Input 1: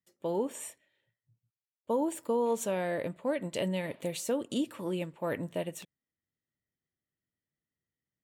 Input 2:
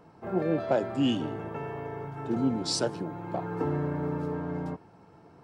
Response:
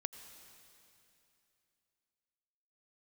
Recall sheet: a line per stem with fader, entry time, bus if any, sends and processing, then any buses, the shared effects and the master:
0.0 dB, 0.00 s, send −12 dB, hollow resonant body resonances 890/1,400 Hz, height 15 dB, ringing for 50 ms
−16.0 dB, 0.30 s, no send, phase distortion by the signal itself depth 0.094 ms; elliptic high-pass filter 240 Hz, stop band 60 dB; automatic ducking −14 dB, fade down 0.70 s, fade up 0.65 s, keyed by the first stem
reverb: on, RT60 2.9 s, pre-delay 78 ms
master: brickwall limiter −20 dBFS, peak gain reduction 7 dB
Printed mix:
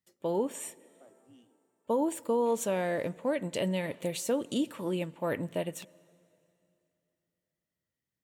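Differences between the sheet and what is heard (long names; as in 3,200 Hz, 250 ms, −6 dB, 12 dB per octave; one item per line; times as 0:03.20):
stem 1: missing hollow resonant body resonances 890/1,400 Hz, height 15 dB, ringing for 50 ms
stem 2 −16.0 dB → −25.0 dB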